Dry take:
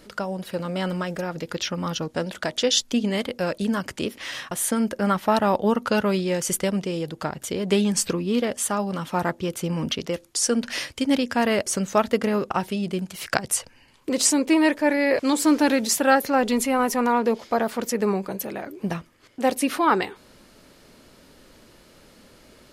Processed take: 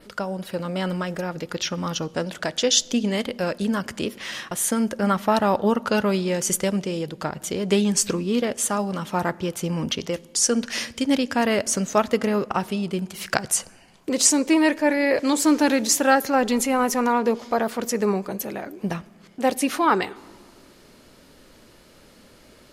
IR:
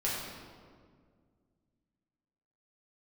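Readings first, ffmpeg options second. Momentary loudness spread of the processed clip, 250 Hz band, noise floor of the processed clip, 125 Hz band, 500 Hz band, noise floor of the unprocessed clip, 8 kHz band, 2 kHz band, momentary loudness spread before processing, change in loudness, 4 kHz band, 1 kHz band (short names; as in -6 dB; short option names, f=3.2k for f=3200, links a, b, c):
11 LU, +0.5 dB, -52 dBFS, +0.5 dB, +0.5 dB, -53 dBFS, +3.0 dB, +0.5 dB, 10 LU, +1.0 dB, +1.0 dB, +0.5 dB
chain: -filter_complex "[0:a]asplit=2[a][b];[1:a]atrim=start_sample=2205[c];[b][c]afir=irnorm=-1:irlink=0,volume=-26.5dB[d];[a][d]amix=inputs=2:normalize=0,adynamicequalizer=threshold=0.00794:dfrequency=6500:dqfactor=2.8:tfrequency=6500:tqfactor=2.8:attack=5:release=100:ratio=0.375:range=2.5:mode=boostabove:tftype=bell"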